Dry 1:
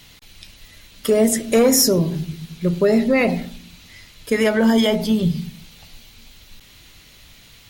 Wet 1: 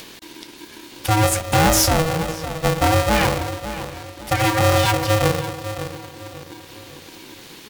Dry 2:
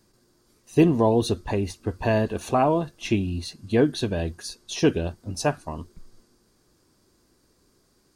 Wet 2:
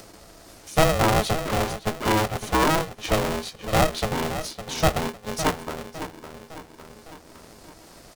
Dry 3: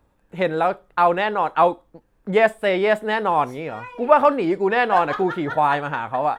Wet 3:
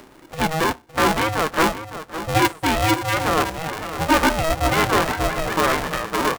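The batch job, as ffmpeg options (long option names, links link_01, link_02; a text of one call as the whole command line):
ffmpeg -i in.wav -filter_complex "[0:a]aeval=exprs='(tanh(4.47*val(0)+0.45)-tanh(0.45))/4.47':channel_layout=same,asplit=2[link_01][link_02];[link_02]adelay=558,lowpass=frequency=2000:poles=1,volume=-11dB,asplit=2[link_03][link_04];[link_04]adelay=558,lowpass=frequency=2000:poles=1,volume=0.35,asplit=2[link_05][link_06];[link_06]adelay=558,lowpass=frequency=2000:poles=1,volume=0.35,asplit=2[link_07][link_08];[link_08]adelay=558,lowpass=frequency=2000:poles=1,volume=0.35[link_09];[link_03][link_05][link_07][link_09]amix=inputs=4:normalize=0[link_10];[link_01][link_10]amix=inputs=2:normalize=0,acompressor=mode=upward:threshold=-35dB:ratio=2.5,aeval=exprs='val(0)*sgn(sin(2*PI*320*n/s))':channel_layout=same,volume=2dB" out.wav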